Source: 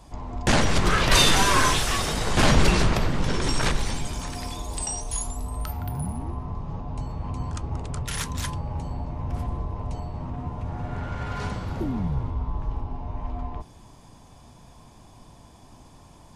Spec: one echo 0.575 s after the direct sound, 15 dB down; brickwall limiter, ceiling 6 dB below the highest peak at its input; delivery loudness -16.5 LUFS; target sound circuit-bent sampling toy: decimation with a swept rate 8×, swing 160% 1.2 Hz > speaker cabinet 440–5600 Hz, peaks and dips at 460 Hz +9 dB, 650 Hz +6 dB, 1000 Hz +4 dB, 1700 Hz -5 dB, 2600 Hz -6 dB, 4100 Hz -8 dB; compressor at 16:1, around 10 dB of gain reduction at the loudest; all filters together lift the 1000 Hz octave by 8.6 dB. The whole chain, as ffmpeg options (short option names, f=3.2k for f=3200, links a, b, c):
-af "equalizer=f=1k:t=o:g=6.5,acompressor=threshold=-21dB:ratio=16,alimiter=limit=-18dB:level=0:latency=1,aecho=1:1:575:0.178,acrusher=samples=8:mix=1:aa=0.000001:lfo=1:lforange=12.8:lforate=1.2,highpass=440,equalizer=f=460:t=q:w=4:g=9,equalizer=f=650:t=q:w=4:g=6,equalizer=f=1k:t=q:w=4:g=4,equalizer=f=1.7k:t=q:w=4:g=-5,equalizer=f=2.6k:t=q:w=4:g=-6,equalizer=f=4.1k:t=q:w=4:g=-8,lowpass=f=5.6k:w=0.5412,lowpass=f=5.6k:w=1.3066,volume=14.5dB"